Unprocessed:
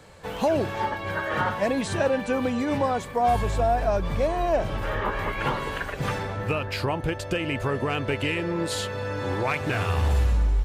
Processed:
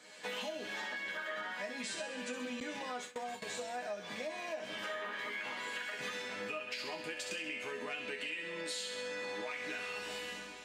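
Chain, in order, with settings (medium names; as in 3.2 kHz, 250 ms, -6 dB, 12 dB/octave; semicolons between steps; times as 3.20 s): recorder AGC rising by 18 dB/s; peak limiter -18 dBFS, peak gain reduction 5 dB; Bessel high-pass 240 Hz, order 4; high-order bell 3.8 kHz +8.5 dB 2.7 oct; chord resonator G#3 minor, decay 0.22 s; feedback echo behind a high-pass 65 ms, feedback 60%, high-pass 2.2 kHz, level -5.5 dB; spring tank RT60 4 s, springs 53 ms, chirp 80 ms, DRR 17 dB; compression 12:1, threshold -43 dBFS, peak gain reduction 11 dB; 2.60–3.61 s: gate with hold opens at -38 dBFS; trim +6 dB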